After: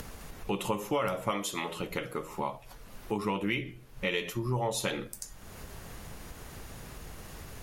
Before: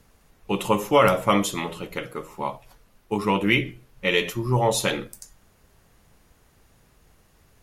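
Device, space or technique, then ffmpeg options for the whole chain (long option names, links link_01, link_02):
upward and downward compression: -filter_complex "[0:a]asettb=1/sr,asplit=3[link_01][link_02][link_03];[link_01]atrim=end=1.314[link_04];[link_02]atrim=start=1.31:end=1.8,asetpts=PTS-STARTPTS,afade=type=in:duration=0.004:curve=qsin,afade=type=out:start_time=0.486:duration=0.004:curve=qsin,lowshelf=frequency=220:gain=-11[link_05];[link_03]atrim=start=1.796[link_06];[link_04][link_05]acrossfade=duration=0.004:curve1=hsin:curve2=qsin[link_07];[link_07][link_06]acrossfade=duration=0.004:curve1=qsin:curve2=hsin,acompressor=mode=upward:threshold=-26dB:ratio=2.5,acompressor=threshold=-25dB:ratio=4,volume=-3dB"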